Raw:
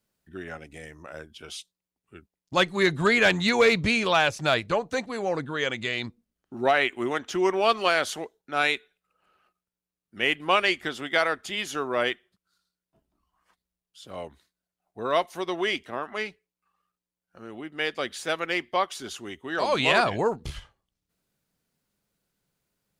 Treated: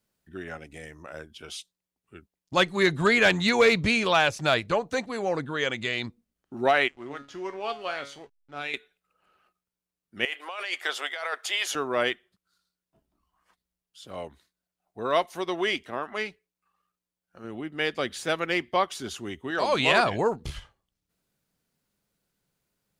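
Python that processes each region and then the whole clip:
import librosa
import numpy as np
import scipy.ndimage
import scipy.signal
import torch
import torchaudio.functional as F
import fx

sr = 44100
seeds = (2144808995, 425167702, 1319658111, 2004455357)

y = fx.chain(x, sr, fx.comb_fb(f0_hz=140.0, decay_s=0.38, harmonics='all', damping=0.0, mix_pct=80),
    fx.backlash(play_db=-47.5),
    fx.air_absorb(metres=50.0), at=(6.88, 8.74))
y = fx.chain(y, sr, fx.highpass(hz=530.0, slope=24),
    fx.over_compress(threshold_db=-31.0, ratio=-1.0), at=(10.25, 11.75))
y = fx.chain(y, sr, fx.highpass(hz=44.0, slope=12),
    fx.low_shelf(hz=230.0, db=8.5), at=(17.44, 19.51))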